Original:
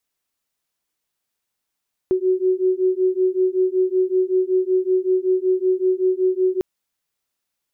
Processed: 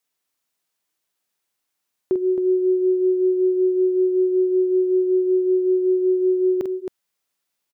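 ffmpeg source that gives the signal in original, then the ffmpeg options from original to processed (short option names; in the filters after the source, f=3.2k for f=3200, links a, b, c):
-f lavfi -i "aevalsrc='0.112*(sin(2*PI*369*t)+sin(2*PI*374.3*t))':d=4.5:s=44100"
-filter_complex "[0:a]lowshelf=f=96:g=-11.5,asplit=2[a][b];[b]aecho=0:1:46.65|268.2:0.447|0.447[c];[a][c]amix=inputs=2:normalize=0"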